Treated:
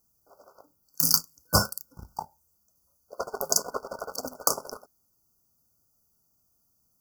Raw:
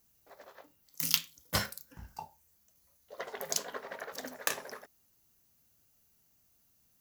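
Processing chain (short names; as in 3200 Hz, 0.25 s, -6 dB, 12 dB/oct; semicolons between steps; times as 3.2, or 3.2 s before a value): sample leveller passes 2; FFT band-reject 1500–4500 Hz; gain +3 dB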